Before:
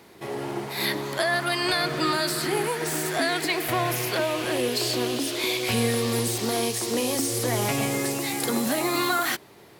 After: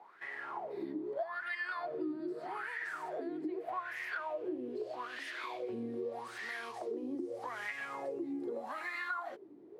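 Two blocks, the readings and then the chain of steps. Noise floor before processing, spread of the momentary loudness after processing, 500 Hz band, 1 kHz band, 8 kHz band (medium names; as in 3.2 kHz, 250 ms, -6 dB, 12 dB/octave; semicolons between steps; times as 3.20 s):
-50 dBFS, 4 LU, -13.5 dB, -12.5 dB, -34.0 dB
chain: wah-wah 0.81 Hz 290–1900 Hz, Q 10; compression 3:1, threshold -47 dBFS, peak gain reduction 15 dB; trim +8 dB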